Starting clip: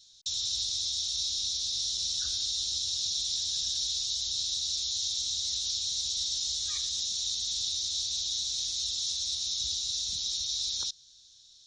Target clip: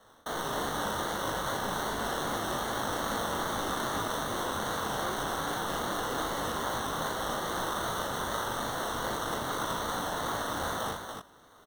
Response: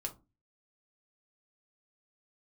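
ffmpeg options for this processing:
-af "acrusher=samples=18:mix=1:aa=0.000001,flanger=delay=17:depth=7.8:speed=2.5,aecho=1:1:37.9|285.7:0.631|0.562"

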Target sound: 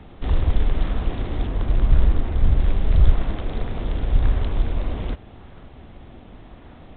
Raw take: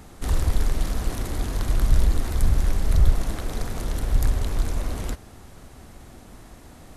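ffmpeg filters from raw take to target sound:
ffmpeg -i in.wav -filter_complex "[0:a]asettb=1/sr,asplit=3[link_01][link_02][link_03];[link_01]atrim=end=1.474[link_04];[link_02]atrim=start=1.47:end=2.6,asetpts=PTS-STARTPTS,afade=type=in:duration=0.004:curve=qsin,afade=type=out:start_time=1.126:duration=0.004:curve=qsin,lowpass=frequency=2400:poles=1[link_05];[link_03]atrim=start=2.596[link_06];[link_04][link_05]acrossfade=duration=0.004:curve1=hsin:curve2=qsin[link_07];[link_07][link_06]acrossfade=duration=0.004:curve1=qsin:curve2=hsin,acrossover=split=330|1300|1700[link_08][link_09][link_10][link_11];[link_10]acrusher=samples=31:mix=1:aa=0.000001:lfo=1:lforange=49.6:lforate=0.86[link_12];[link_08][link_09][link_12][link_11]amix=inputs=4:normalize=0,volume=2.5dB" -ar 8000 -c:a pcm_mulaw out.wav

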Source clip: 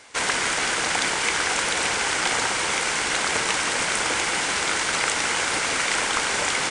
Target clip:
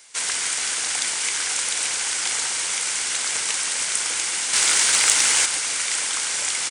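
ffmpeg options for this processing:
ffmpeg -i in.wav -filter_complex "[0:a]asettb=1/sr,asplit=3[link_01][link_02][link_03];[link_01]atrim=end=4.534[link_04];[link_02]atrim=start=4.53:end=5.46,asetpts=PTS-STARTPTS,afade=type=in:duration=0.004:curve=qsin,afade=type=out:start_time=0.926:duration=0.004:curve=qsin,acontrast=74[link_05];[link_03]atrim=start=5.456[link_06];[link_04][link_05]acrossfade=duration=0.004:curve1=hsin:curve2=qsin[link_07];[link_07][link_06]acrossfade=duration=0.004:curve1=qsin:curve2=hsin,asplit=2[link_08][link_09];[link_09]adelay=139.9,volume=-12dB,highshelf=frequency=4000:gain=-3.15[link_10];[link_08][link_10]amix=inputs=2:normalize=0,crystalizer=i=8:c=0,volume=-14dB" out.wav

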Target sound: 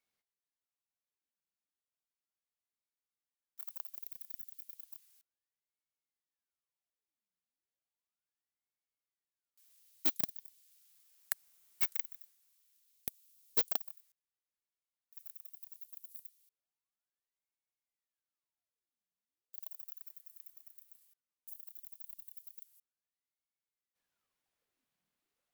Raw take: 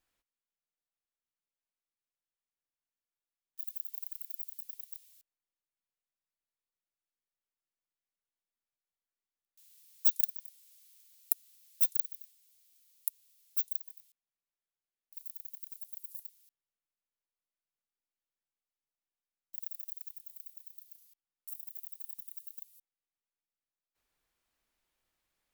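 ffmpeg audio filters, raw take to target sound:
ffmpeg -i in.wav -filter_complex "[0:a]asettb=1/sr,asplit=3[link_01][link_02][link_03];[link_01]atrim=end=13.084[link_04];[link_02]atrim=start=13.08:end=13.96,asetpts=PTS-STARTPTS,afade=type=in:duration=0.004:curve=qsin,afade=type=out:start_time=0.876:duration=0.004:curve=qsin,highshelf=frequency=5100:gain=6.5[link_05];[link_03]atrim=start=13.956[link_06];[link_04][link_05]acrossfade=duration=0.004:curve1=hsin:curve2=qsin[link_07];[link_07][link_06]acrossfade=duration=0.004:curve1=qsin:curve2=hsin,aeval=exprs='(tanh(3.55*val(0)+0.65)-tanh(0.65))/3.55':channel_layout=same,aeval=exprs='val(0)*sin(2*PI*1200*n/s+1200*0.85/0.34*sin(2*PI*0.34*n/s))':channel_layout=same,volume=1dB" out.wav

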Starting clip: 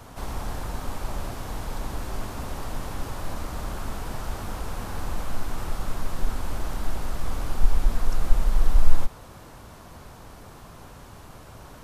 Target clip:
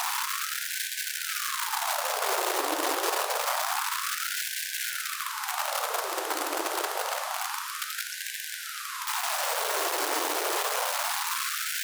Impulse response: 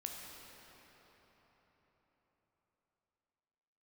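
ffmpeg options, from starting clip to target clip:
-filter_complex "[0:a]aeval=exprs='val(0)+0.5*0.0422*sgn(val(0))':channel_layout=same,asplit=2[link_01][link_02];[1:a]atrim=start_sample=2205,highshelf=frequency=2000:gain=3.5[link_03];[link_02][link_03]afir=irnorm=-1:irlink=0,volume=0dB[link_04];[link_01][link_04]amix=inputs=2:normalize=0,afftfilt=real='re*gte(b*sr/1024,290*pow(1500/290,0.5+0.5*sin(2*PI*0.27*pts/sr)))':imag='im*gte(b*sr/1024,290*pow(1500/290,0.5+0.5*sin(2*PI*0.27*pts/sr)))':win_size=1024:overlap=0.75,volume=1dB"

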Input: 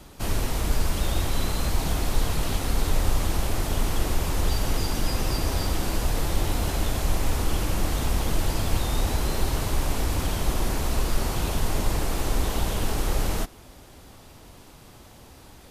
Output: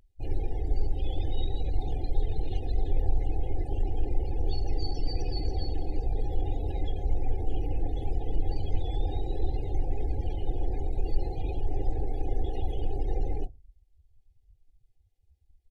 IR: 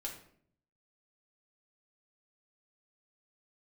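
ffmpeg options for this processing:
-filter_complex "[0:a]bandreject=frequency=56.74:width_type=h:width=4,bandreject=frequency=113.48:width_type=h:width=4,bandreject=frequency=170.22:width_type=h:width=4,bandreject=frequency=226.96:width_type=h:width=4,bandreject=frequency=283.7:width_type=h:width=4,bandreject=frequency=340.44:width_type=h:width=4,bandreject=frequency=397.18:width_type=h:width=4,bandreject=frequency=453.92:width_type=h:width=4,bandreject=frequency=510.66:width_type=h:width=4,bandreject=frequency=567.4:width_type=h:width=4,bandreject=frequency=624.14:width_type=h:width=4,bandreject=frequency=680.88:width_type=h:width=4,bandreject=frequency=737.62:width_type=h:width=4,bandreject=frequency=794.36:width_type=h:width=4,bandreject=frequency=851.1:width_type=h:width=4,bandreject=frequency=907.84:width_type=h:width=4,bandreject=frequency=964.58:width_type=h:width=4,bandreject=frequency=1021.32:width_type=h:width=4,bandreject=frequency=1078.06:width_type=h:width=4,asplit=2[link_01][link_02];[1:a]atrim=start_sample=2205[link_03];[link_02][link_03]afir=irnorm=-1:irlink=0,volume=-14dB[link_04];[link_01][link_04]amix=inputs=2:normalize=0,afftdn=noise_reduction=34:noise_floor=-31,aecho=1:1:2.3:0.78,asetrate=41625,aresample=44100,atempo=1.05946,asuperstop=centerf=1200:order=12:qfactor=1.3,volume=-7.5dB"

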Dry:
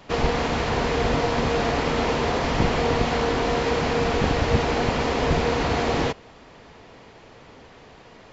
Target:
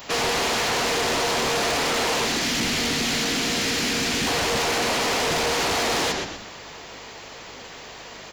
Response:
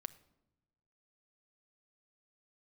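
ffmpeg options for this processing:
-filter_complex "[0:a]asettb=1/sr,asplit=3[link_01][link_02][link_03];[link_01]atrim=end=2.254[link_04];[link_02]atrim=start=2.25:end=4.27,asetpts=PTS-STARTPTS,afade=type=in:duration=0.004:curve=qsin,afade=type=out:start_time=2.016:duration=0.004:curve=qsin,equalizer=frequency=125:width_type=o:width=1:gain=-4,equalizer=frequency=250:width_type=o:width=1:gain=8,equalizer=frequency=500:width_type=o:width=1:gain=-9,equalizer=frequency=1000:width_type=o:width=1:gain=-10[link_05];[link_03]atrim=start=4.266[link_06];[link_04][link_05]acrossfade=duration=0.004:curve1=hsin:curve2=qsin[link_07];[link_07][link_06]acrossfade=duration=0.004:curve1=qsin:curve2=hsin,aeval=exprs='val(0)+0.00398*(sin(2*PI*50*n/s)+sin(2*PI*2*50*n/s)/2+sin(2*PI*3*50*n/s)/3+sin(2*PI*4*50*n/s)/4+sin(2*PI*5*50*n/s)/5)':channel_layout=same,aemphasis=mode=production:type=riaa,asplit=5[link_08][link_09][link_10][link_11][link_12];[link_09]adelay=122,afreqshift=-87,volume=-9dB[link_13];[link_10]adelay=244,afreqshift=-174,volume=-17.9dB[link_14];[link_11]adelay=366,afreqshift=-261,volume=-26.7dB[link_15];[link_12]adelay=488,afreqshift=-348,volume=-35.6dB[link_16];[link_08][link_13][link_14][link_15][link_16]amix=inputs=5:normalize=0,asoftclip=type=tanh:threshold=-27.5dB,volume=7dB"

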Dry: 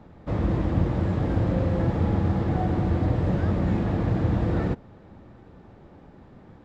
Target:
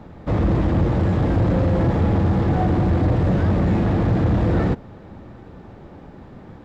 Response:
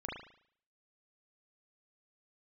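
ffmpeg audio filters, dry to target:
-af "asoftclip=type=tanh:threshold=-20dB,volume=8dB"

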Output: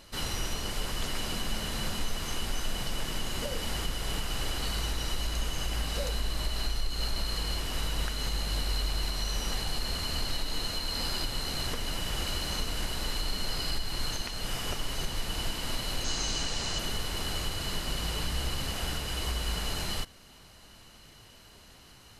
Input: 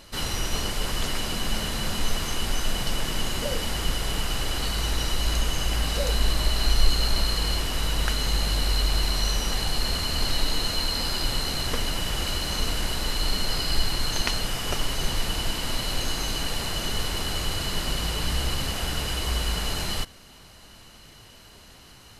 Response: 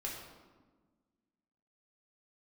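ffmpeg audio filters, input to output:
-filter_complex "[0:a]alimiter=limit=-16dB:level=0:latency=1:release=247,asettb=1/sr,asplit=3[link_01][link_02][link_03];[link_01]atrim=end=16.044[link_04];[link_02]atrim=start=16.04:end=16.79,asetpts=PTS-STARTPTS,afade=type=in:duration=0.004:curve=qsin,afade=type=out:start_time=0.746:duration=0.004:curve=qsin,lowpass=frequency=6600:width_type=q:width=2.1[link_05];[link_03]atrim=start=16.786[link_06];[link_04][link_05]acrossfade=duration=0.004:curve1=hsin:curve2=qsin[link_07];[link_07][link_06]acrossfade=duration=0.004:curve1=qsin:curve2=hsin,volume=-4.5dB"

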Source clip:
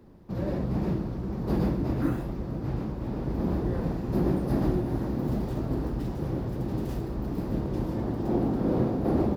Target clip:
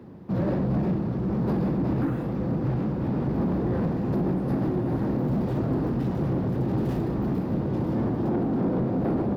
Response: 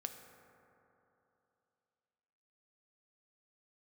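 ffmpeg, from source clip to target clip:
-filter_complex "[0:a]bass=frequency=250:gain=4,treble=frequency=4000:gain=-9,areverse,acompressor=mode=upward:threshold=-42dB:ratio=2.5,areverse,highpass=120,asplit=2[link_01][link_02];[1:a]atrim=start_sample=2205[link_03];[link_02][link_03]afir=irnorm=-1:irlink=0,volume=0.5dB[link_04];[link_01][link_04]amix=inputs=2:normalize=0,alimiter=limit=-16dB:level=0:latency=1:release=404,asoftclip=type=tanh:threshold=-21.5dB,volume=2.5dB"

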